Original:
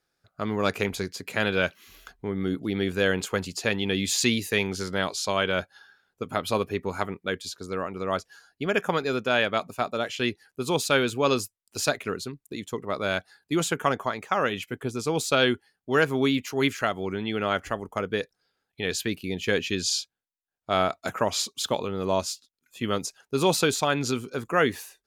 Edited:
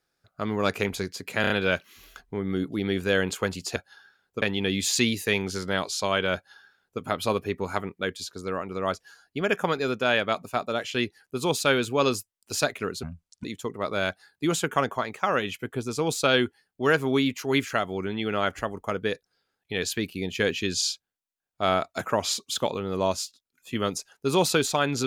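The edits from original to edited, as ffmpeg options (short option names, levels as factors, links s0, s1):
-filter_complex "[0:a]asplit=8[s0][s1][s2][s3][s4][s5][s6][s7];[s0]atrim=end=1.442[s8];[s1]atrim=start=1.408:end=1.442[s9];[s2]atrim=start=1.408:end=1.442[s10];[s3]atrim=start=1.408:end=3.672[s11];[s4]atrim=start=5.598:end=6.262[s12];[s5]atrim=start=3.668:end=12.284[s13];[s6]atrim=start=12.28:end=12.53,asetpts=PTS-STARTPTS,asetrate=26460,aresample=44100[s14];[s7]atrim=start=12.526[s15];[s8][s9]acrossfade=d=0.004:c1=hsin:c2=hsin[s16];[s16][s10]acrossfade=d=0.004:c1=hsin:c2=hsin[s17];[s17][s11]acrossfade=d=0.004:c1=hsin:c2=hsin[s18];[s18][s12]acrossfade=d=0.004:c1=hsin:c2=hsin[s19];[s19][s13]acrossfade=d=0.004:c1=hsin:c2=hsin[s20];[s20][s14]acrossfade=d=0.004:c1=hsin:c2=hsin[s21];[s21][s15]acrossfade=d=0.004:c1=hsin:c2=hsin"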